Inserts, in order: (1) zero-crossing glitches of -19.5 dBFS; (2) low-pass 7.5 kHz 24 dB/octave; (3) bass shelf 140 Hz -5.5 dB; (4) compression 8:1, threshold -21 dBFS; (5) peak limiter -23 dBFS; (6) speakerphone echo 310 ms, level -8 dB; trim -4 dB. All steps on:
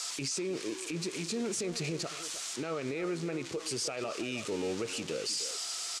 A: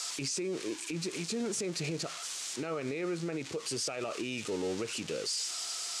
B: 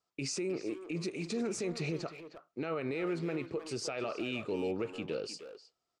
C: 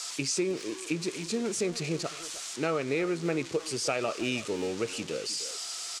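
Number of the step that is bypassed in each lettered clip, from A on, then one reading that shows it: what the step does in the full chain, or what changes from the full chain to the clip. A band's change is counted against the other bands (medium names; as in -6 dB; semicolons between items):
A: 6, echo-to-direct -13.5 dB to none; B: 1, distortion -6 dB; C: 5, mean gain reduction 2.0 dB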